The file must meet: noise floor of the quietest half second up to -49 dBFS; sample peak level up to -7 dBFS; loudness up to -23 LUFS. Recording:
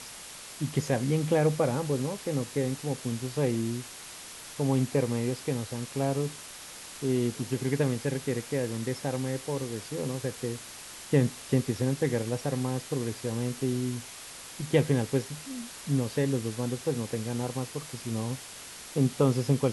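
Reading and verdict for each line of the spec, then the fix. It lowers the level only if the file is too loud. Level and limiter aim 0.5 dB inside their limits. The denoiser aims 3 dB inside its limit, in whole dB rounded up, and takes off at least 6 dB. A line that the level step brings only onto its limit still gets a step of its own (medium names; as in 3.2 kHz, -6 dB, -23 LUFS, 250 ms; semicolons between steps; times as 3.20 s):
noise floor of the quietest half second -44 dBFS: fail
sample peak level -10.5 dBFS: pass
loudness -30.0 LUFS: pass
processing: noise reduction 8 dB, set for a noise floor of -44 dBFS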